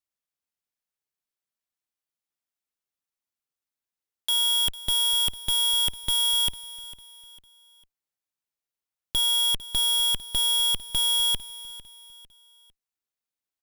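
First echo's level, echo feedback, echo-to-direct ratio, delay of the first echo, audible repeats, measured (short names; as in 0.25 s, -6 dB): -17.0 dB, 37%, -16.5 dB, 0.451 s, 3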